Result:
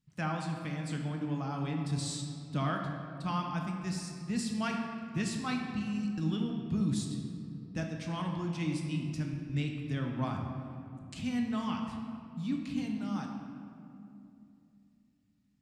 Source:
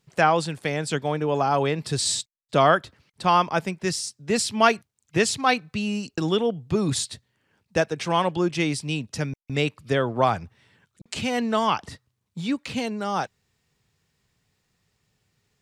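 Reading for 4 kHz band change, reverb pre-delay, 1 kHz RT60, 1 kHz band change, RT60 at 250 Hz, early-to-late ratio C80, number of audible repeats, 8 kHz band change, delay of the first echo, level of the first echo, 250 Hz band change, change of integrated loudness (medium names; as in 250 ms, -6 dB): -14.5 dB, 5 ms, 2.4 s, -16.0 dB, 3.7 s, 5.0 dB, no echo, -15.0 dB, no echo, no echo, -5.0 dB, -11.0 dB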